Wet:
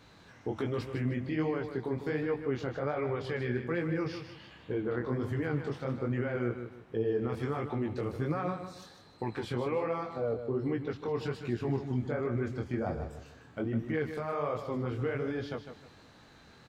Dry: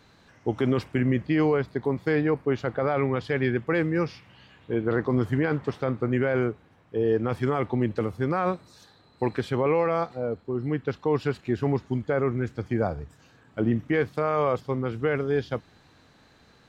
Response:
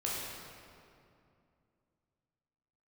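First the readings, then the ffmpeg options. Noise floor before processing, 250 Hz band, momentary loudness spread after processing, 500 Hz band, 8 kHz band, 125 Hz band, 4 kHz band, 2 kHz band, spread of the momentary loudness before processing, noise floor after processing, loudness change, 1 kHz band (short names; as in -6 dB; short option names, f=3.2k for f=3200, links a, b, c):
-58 dBFS, -7.5 dB, 8 LU, -7.5 dB, n/a, -6.0 dB, -5.0 dB, -8.0 dB, 6 LU, -57 dBFS, -7.5 dB, -8.5 dB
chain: -filter_complex "[0:a]alimiter=limit=-23.5dB:level=0:latency=1:release=141,flanger=delay=17:depth=7.8:speed=1.3,asplit=2[a][b];[b]aecho=0:1:153|306|459|612:0.355|0.11|0.0341|0.0106[c];[a][c]amix=inputs=2:normalize=0,volume=3dB"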